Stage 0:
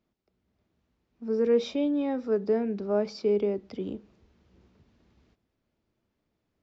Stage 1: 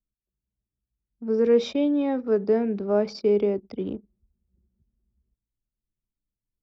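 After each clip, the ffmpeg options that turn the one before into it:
-af "anlmdn=0.0398,volume=4dB"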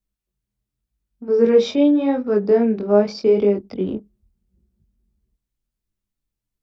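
-af "flanger=delay=19.5:depth=4.9:speed=0.84,volume=8.5dB"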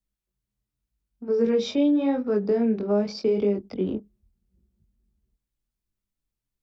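-filter_complex "[0:a]acrossover=split=260|3000[a][b][c];[b]acompressor=threshold=-19dB:ratio=6[d];[a][d][c]amix=inputs=3:normalize=0,volume=-3dB"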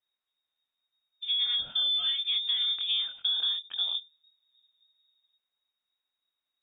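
-filter_complex "[0:a]acrossover=split=400|1600[a][b][c];[a]acompressor=threshold=-27dB:ratio=4[d];[b]acompressor=threshold=-37dB:ratio=4[e];[c]acompressor=threshold=-52dB:ratio=4[f];[d][e][f]amix=inputs=3:normalize=0,tiltshelf=f=970:g=-4,lowpass=f=3.2k:t=q:w=0.5098,lowpass=f=3.2k:t=q:w=0.6013,lowpass=f=3.2k:t=q:w=0.9,lowpass=f=3.2k:t=q:w=2.563,afreqshift=-3800,volume=2dB"

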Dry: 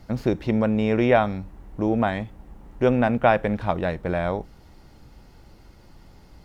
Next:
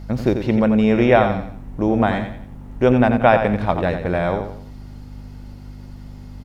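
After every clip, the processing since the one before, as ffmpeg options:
-af "aeval=exprs='val(0)+0.0126*(sin(2*PI*50*n/s)+sin(2*PI*2*50*n/s)/2+sin(2*PI*3*50*n/s)/3+sin(2*PI*4*50*n/s)/4+sin(2*PI*5*50*n/s)/5)':c=same,aecho=1:1:88|176|264|352:0.398|0.147|0.0545|0.0202,volume=4dB"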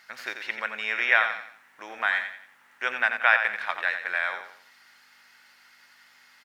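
-af "highpass=f=1.7k:t=q:w=2.7,volume=-2.5dB"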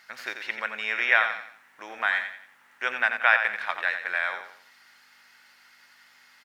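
-af anull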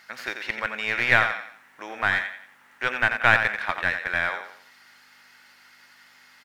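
-filter_complex "[0:a]asplit=2[a][b];[b]aeval=exprs='clip(val(0),-1,0.0422)':c=same,volume=-3.5dB[c];[a][c]amix=inputs=2:normalize=0,lowshelf=f=390:g=6,volume=-2dB"

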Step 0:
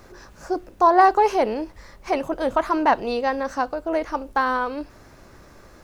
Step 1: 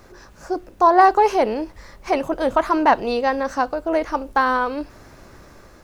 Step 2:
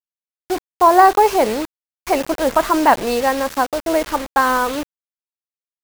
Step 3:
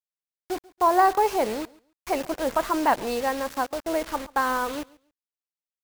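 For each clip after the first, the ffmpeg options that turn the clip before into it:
-af "dynaudnorm=f=290:g=5:m=3.5dB"
-af "acrusher=bits=4:mix=0:aa=0.000001,volume=2.5dB"
-af "aecho=1:1:139|278:0.0708|0.0142,volume=-8.5dB"

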